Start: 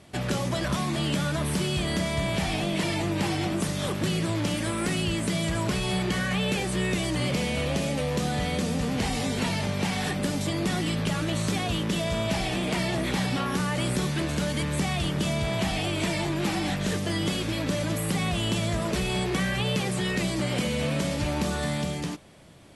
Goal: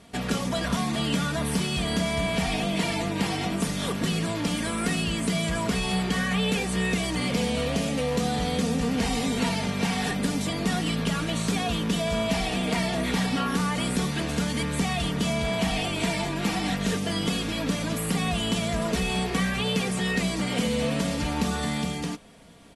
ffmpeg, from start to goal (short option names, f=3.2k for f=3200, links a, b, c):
-af "aecho=1:1:4.3:0.57"